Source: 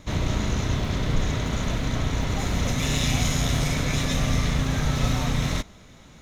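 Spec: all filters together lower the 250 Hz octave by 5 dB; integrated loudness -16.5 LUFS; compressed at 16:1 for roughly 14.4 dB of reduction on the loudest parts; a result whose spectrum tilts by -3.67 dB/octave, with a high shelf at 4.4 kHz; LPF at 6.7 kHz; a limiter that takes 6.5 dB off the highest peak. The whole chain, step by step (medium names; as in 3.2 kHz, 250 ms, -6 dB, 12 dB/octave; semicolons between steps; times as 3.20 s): low-pass 6.7 kHz; peaking EQ 250 Hz -7.5 dB; treble shelf 4.4 kHz +8 dB; compression 16:1, threshold -33 dBFS; trim +23.5 dB; peak limiter -6 dBFS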